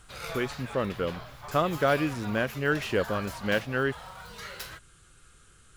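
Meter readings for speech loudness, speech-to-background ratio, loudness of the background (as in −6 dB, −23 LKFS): −29.5 LKFS, 11.0 dB, −40.5 LKFS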